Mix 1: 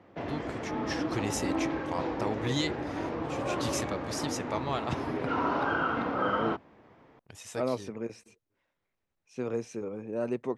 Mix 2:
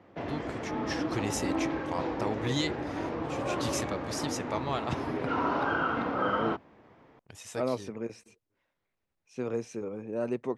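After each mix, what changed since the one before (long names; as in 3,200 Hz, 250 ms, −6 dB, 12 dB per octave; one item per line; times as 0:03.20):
nothing changed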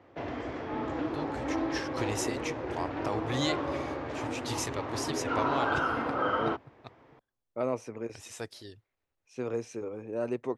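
first voice: entry +0.85 s
master: add parametric band 190 Hz −12.5 dB 0.32 octaves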